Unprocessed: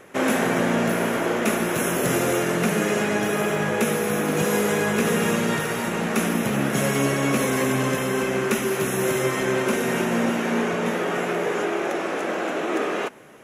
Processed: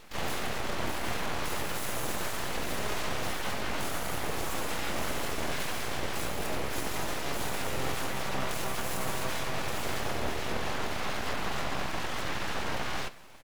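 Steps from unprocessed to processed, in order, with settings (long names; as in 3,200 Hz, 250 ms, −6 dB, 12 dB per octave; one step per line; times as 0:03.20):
parametric band 810 Hz −10 dB 0.34 octaves
hum removal 215.7 Hz, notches 22
brickwall limiter −19.5 dBFS, peak gain reduction 9.5 dB
pitch-shifted copies added −7 semitones −4 dB, +7 semitones −8 dB, +12 semitones −5 dB
full-wave rectification
level −4.5 dB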